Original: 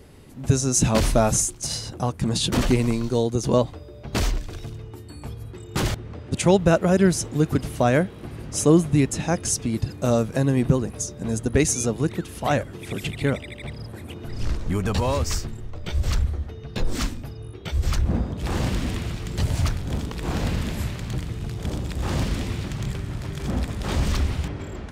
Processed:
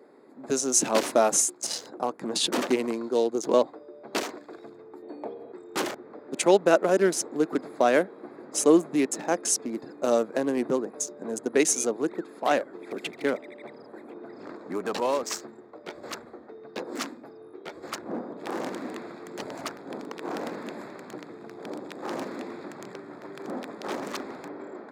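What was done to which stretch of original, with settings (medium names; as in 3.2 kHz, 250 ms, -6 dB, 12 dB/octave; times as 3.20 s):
5.02–5.52 s: FFT filter 130 Hz 0 dB, 630 Hz +12 dB, 1.3 kHz -2 dB, 3.2 kHz +7 dB, 5.9 kHz -11 dB
14.10–14.56 s: treble shelf 8 kHz -10 dB
whole clip: local Wiener filter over 15 samples; high-pass 290 Hz 24 dB/octave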